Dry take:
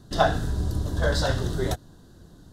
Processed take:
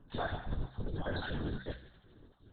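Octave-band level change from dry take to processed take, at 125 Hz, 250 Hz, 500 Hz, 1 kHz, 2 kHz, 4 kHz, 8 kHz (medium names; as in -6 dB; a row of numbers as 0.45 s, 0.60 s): -13.5 dB, -10.0 dB, -15.0 dB, -15.0 dB, -11.5 dB, -14.5 dB, under -40 dB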